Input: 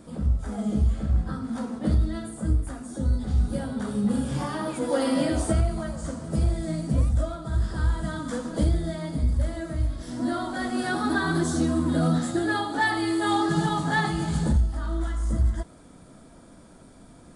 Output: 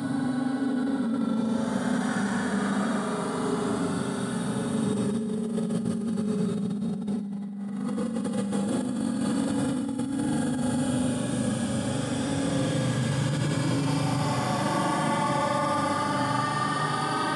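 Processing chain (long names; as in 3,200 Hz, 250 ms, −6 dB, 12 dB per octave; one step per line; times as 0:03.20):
extreme stretch with random phases 21×, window 0.05 s, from 0:03.72
high-pass filter 110 Hz 24 dB per octave
low-shelf EQ 480 Hz −4.5 dB
spring reverb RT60 3.8 s, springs 40 ms, chirp 75 ms, DRR 2 dB
compressor whose output falls as the input rises −29 dBFS, ratio −1
level +2.5 dB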